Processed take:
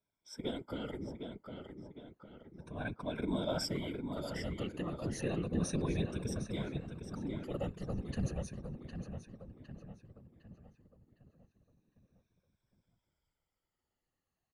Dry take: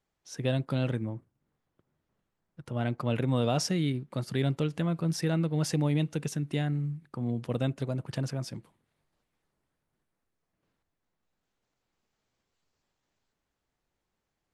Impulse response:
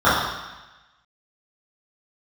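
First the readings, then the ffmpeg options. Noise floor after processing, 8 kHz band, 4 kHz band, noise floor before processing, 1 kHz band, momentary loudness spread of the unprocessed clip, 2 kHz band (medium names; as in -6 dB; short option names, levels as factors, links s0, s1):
under -85 dBFS, -7.0 dB, -6.0 dB, -84 dBFS, -7.5 dB, 8 LU, -6.0 dB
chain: -filter_complex "[0:a]afftfilt=real='re*pow(10,21/40*sin(2*PI*(1.6*log(max(b,1)*sr/1024/100)/log(2)-(-0.32)*(pts-256)/sr)))':imag='im*pow(10,21/40*sin(2*PI*(1.6*log(max(b,1)*sr/1024/100)/log(2)-(-0.32)*(pts-256)/sr)))':win_size=1024:overlap=0.75,asplit=2[s0][s1];[s1]adelay=758,lowpass=f=3900:p=1,volume=0.473,asplit=2[s2][s3];[s3]adelay=758,lowpass=f=3900:p=1,volume=0.47,asplit=2[s4][s5];[s5]adelay=758,lowpass=f=3900:p=1,volume=0.47,asplit=2[s6][s7];[s7]adelay=758,lowpass=f=3900:p=1,volume=0.47,asplit=2[s8][s9];[s9]adelay=758,lowpass=f=3900:p=1,volume=0.47,asplit=2[s10][s11];[s11]adelay=758,lowpass=f=3900:p=1,volume=0.47[s12];[s0][s2][s4][s6][s8][s10][s12]amix=inputs=7:normalize=0,afftfilt=real='hypot(re,im)*cos(2*PI*random(0))':imag='hypot(re,im)*sin(2*PI*random(1))':win_size=512:overlap=0.75,volume=0.501"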